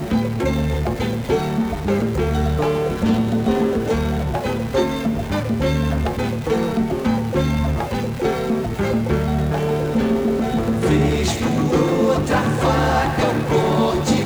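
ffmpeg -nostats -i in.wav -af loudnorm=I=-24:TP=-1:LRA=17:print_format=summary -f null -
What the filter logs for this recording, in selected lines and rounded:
Input Integrated:    -19.5 LUFS
Input True Peak:      -4.3 dBTP
Input LRA:             2.8 LU
Input Threshold:     -29.5 LUFS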